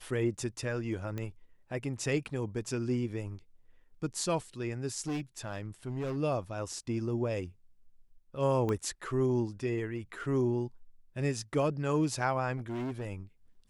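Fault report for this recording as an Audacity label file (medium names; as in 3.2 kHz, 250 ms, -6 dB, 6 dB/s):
1.180000	1.180000	pop -24 dBFS
5.070000	6.180000	clipped -31 dBFS
8.690000	8.690000	pop -21 dBFS
12.570000	13.070000	clipped -33 dBFS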